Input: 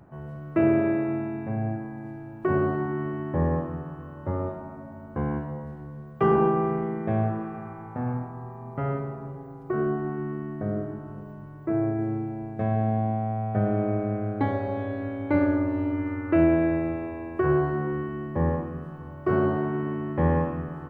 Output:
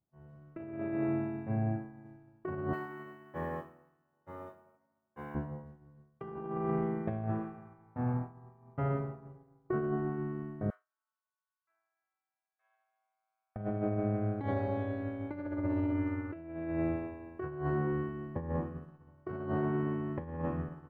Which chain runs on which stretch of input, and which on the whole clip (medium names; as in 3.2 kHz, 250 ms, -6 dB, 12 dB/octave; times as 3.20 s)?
2.73–5.35 s: tilt EQ +4.5 dB/octave + echo whose repeats swap between lows and highs 264 ms, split 960 Hz, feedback 60%, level -11 dB + tape noise reduction on one side only decoder only
10.70–13.56 s: high-pass 1.2 kHz 24 dB/octave + band-stop 1.9 kHz
whole clip: expander -28 dBFS; bass shelf 240 Hz +3 dB; compressor with a negative ratio -25 dBFS, ratio -0.5; trim -7.5 dB